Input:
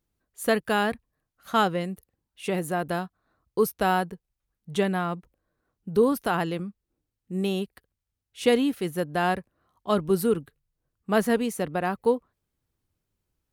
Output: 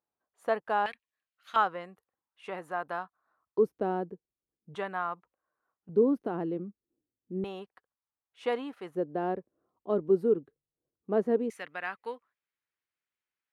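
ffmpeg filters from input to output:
-af "asetnsamples=n=441:p=0,asendcmd='0.86 bandpass f 2700;1.56 bandpass f 1100;3.58 bandpass f 350;4.75 bandpass f 1100;5.89 bandpass f 330;7.44 bandpass f 1000;8.95 bandpass f 390;11.5 bandpass f 2000',bandpass=f=850:t=q:w=1.7:csg=0"

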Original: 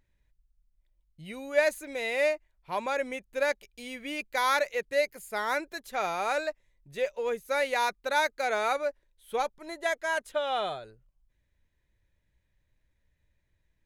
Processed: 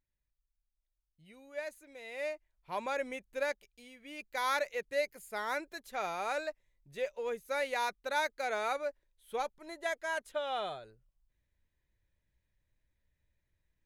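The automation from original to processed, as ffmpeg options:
-af "volume=1.78,afade=t=in:st=2.04:d=0.77:silence=0.281838,afade=t=out:st=3.31:d=0.65:silence=0.281838,afade=t=in:st=3.96:d=0.52:silence=0.316228"

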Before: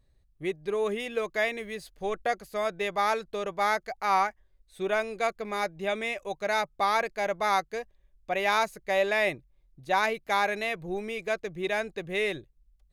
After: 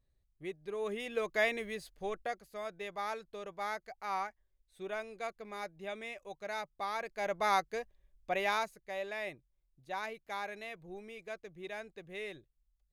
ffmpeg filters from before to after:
-af "volume=2,afade=t=in:st=0.73:d=0.79:silence=0.375837,afade=t=out:st=1.52:d=0.89:silence=0.316228,afade=t=in:st=6.99:d=0.43:silence=0.398107,afade=t=out:st=8.31:d=0.49:silence=0.316228"

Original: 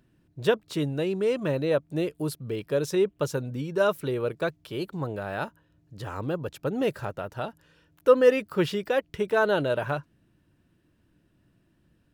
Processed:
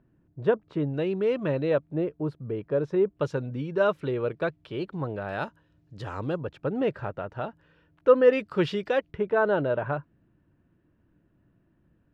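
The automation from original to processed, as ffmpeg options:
-af "asetnsamples=n=441:p=0,asendcmd='0.94 lowpass f 2900;1.9 lowpass f 1400;3.17 lowpass f 3000;5.29 lowpass f 5600;6.41 lowpass f 2400;8.33 lowpass f 4500;9.11 lowpass f 1700',lowpass=1400"

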